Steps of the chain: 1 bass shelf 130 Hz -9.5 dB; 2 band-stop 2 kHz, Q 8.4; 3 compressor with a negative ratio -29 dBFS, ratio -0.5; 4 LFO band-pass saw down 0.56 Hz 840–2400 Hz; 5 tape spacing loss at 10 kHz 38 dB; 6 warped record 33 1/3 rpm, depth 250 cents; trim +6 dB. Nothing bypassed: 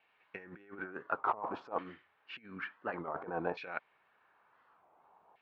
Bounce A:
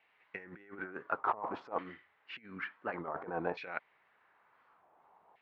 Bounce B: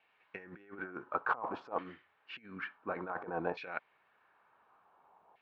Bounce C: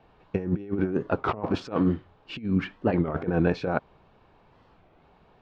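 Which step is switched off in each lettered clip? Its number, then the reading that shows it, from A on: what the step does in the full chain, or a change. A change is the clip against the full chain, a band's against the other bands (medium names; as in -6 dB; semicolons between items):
2, momentary loudness spread change -2 LU; 6, 2 kHz band +2.0 dB; 4, 125 Hz band +13.5 dB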